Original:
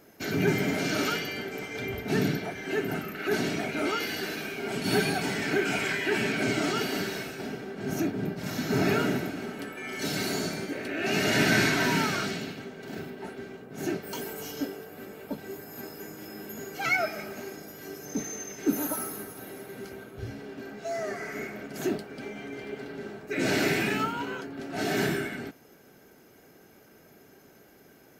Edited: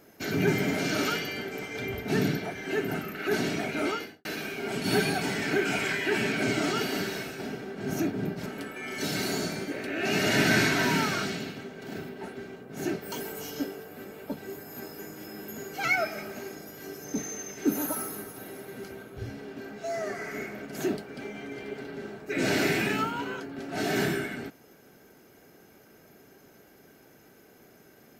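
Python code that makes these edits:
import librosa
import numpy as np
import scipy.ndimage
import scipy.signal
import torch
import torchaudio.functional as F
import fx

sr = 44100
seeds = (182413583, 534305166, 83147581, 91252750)

y = fx.studio_fade_out(x, sr, start_s=3.85, length_s=0.4)
y = fx.edit(y, sr, fx.cut(start_s=8.46, length_s=1.01), tone=tone)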